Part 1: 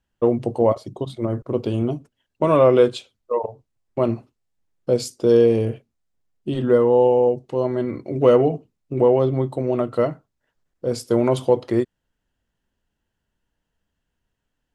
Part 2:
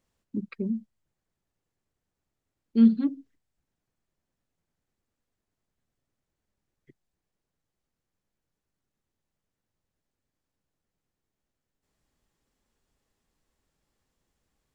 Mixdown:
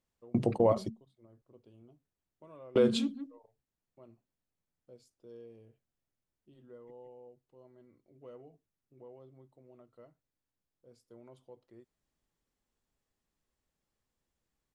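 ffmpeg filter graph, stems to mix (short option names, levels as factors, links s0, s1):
-filter_complex "[0:a]volume=0.75[s0];[1:a]volume=0.376,asplit=3[s1][s2][s3];[s2]volume=0.398[s4];[s3]apad=whole_len=650449[s5];[s0][s5]sidechaingate=range=0.02:threshold=0.00251:ratio=16:detection=peak[s6];[s4]aecho=0:1:168:1[s7];[s6][s1][s7]amix=inputs=3:normalize=0,alimiter=limit=0.158:level=0:latency=1:release=42"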